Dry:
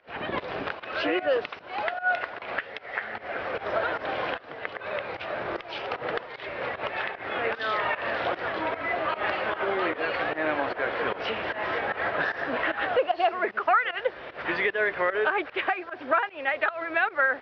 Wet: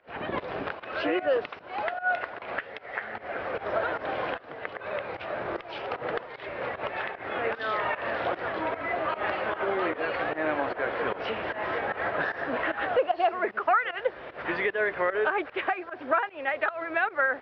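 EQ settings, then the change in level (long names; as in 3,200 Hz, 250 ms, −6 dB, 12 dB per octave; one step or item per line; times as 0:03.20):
high-shelf EQ 2,600 Hz −8 dB
0.0 dB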